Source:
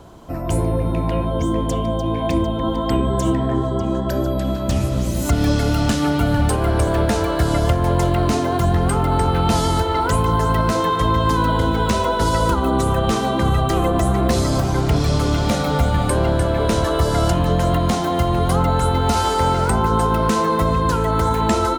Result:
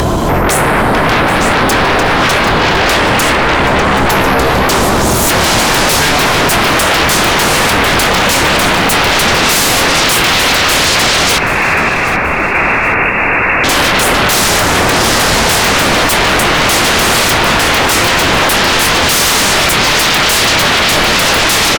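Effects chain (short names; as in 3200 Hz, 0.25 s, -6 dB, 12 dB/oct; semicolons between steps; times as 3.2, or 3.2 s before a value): upward compressor, threshold -21 dBFS; sine folder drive 19 dB, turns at -6.5 dBFS; doubler 26 ms -11 dB; 11.38–13.64 inverted band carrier 2700 Hz; lo-fi delay 0.779 s, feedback 35%, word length 6-bit, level -14 dB; gain -1 dB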